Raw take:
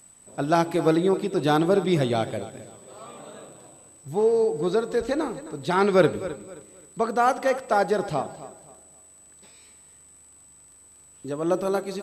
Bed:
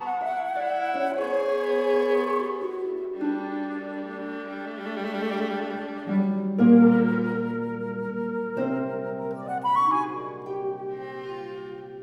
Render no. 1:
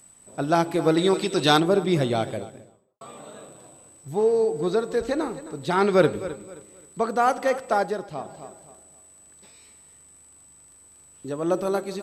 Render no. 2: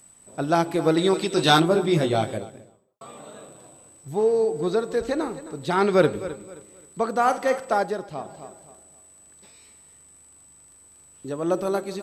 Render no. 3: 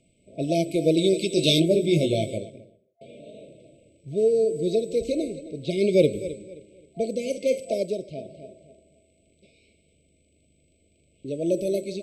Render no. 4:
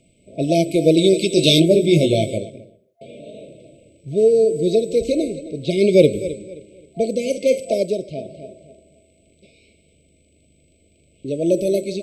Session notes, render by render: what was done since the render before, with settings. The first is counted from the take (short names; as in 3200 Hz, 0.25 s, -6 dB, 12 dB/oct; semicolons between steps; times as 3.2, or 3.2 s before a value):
0.97–1.6 bell 4400 Hz +12 dB 2.9 oct; 2.29–3.01 studio fade out; 7.71–8.46 dip -10 dB, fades 0.36 s
1.35–2.38 doubler 19 ms -4.5 dB; 7.11–7.7 flutter echo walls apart 7.8 m, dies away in 0.23 s
FFT band-reject 680–2100 Hz; low-pass opened by the level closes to 2500 Hz, open at -21 dBFS
gain +6.5 dB; limiter -1 dBFS, peak gain reduction 1.5 dB